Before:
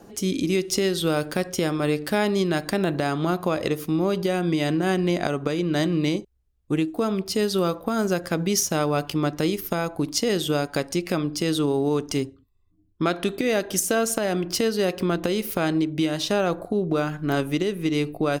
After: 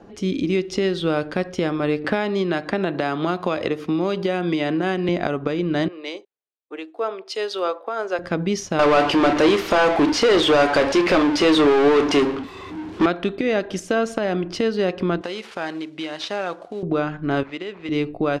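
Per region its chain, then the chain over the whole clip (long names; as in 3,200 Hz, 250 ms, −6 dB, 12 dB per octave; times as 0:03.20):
0:02.04–0:05.09: high-pass filter 49 Hz + low-shelf EQ 200 Hz −7 dB + multiband upward and downward compressor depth 100%
0:05.88–0:08.19: high-pass filter 430 Hz 24 dB per octave + multiband upward and downward expander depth 70%
0:08.79–0:13.06: high-pass filter 350 Hz + power curve on the samples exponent 0.35 + double-tracking delay 28 ms −13 dB
0:15.21–0:16.83: variable-slope delta modulation 64 kbit/s + high-pass filter 900 Hz 6 dB per octave + high-shelf EQ 5,100 Hz +4.5 dB
0:17.43–0:17.89: high-pass filter 990 Hz 6 dB per octave + linearly interpolated sample-rate reduction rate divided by 4×
whole clip: low-pass filter 3,300 Hz 12 dB per octave; parametric band 150 Hz −3.5 dB 0.23 octaves; level +2 dB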